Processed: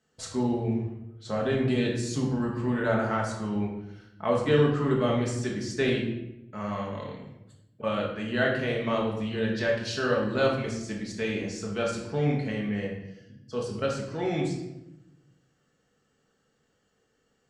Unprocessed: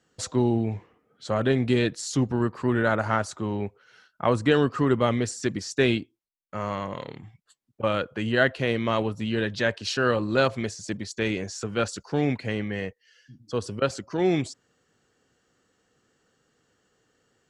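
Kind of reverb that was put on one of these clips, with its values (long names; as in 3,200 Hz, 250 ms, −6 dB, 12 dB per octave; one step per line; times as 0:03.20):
rectangular room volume 330 cubic metres, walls mixed, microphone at 1.5 metres
level −7.5 dB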